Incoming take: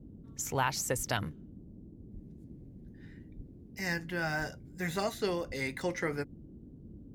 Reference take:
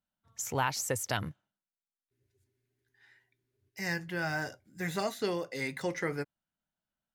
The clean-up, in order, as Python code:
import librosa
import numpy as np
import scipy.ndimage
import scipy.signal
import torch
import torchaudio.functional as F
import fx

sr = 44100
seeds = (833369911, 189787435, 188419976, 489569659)

y = fx.fix_deplosive(x, sr, at_s=(0.96, 2.13, 3.36, 4.38, 5.47))
y = fx.noise_reduce(y, sr, print_start_s=6.35, print_end_s=6.85, reduce_db=30.0)